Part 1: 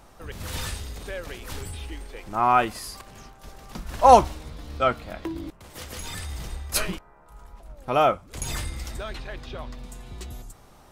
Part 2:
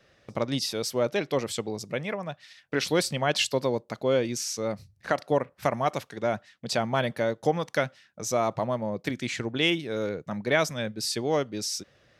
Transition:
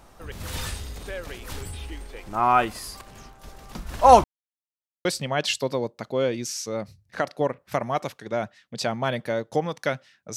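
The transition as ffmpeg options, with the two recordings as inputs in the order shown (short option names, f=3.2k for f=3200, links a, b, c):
-filter_complex "[0:a]apad=whole_dur=10.36,atrim=end=10.36,asplit=2[a][b];[a]atrim=end=4.24,asetpts=PTS-STARTPTS,afade=t=out:st=4.236:d=0.004:c=hsin[c];[b]atrim=start=4.24:end=5.05,asetpts=PTS-STARTPTS,volume=0[d];[1:a]atrim=start=2.96:end=8.27,asetpts=PTS-STARTPTS,afade=t=in:d=0.004:c=hsin[e];[c][d][e]concat=n=3:v=0:a=1"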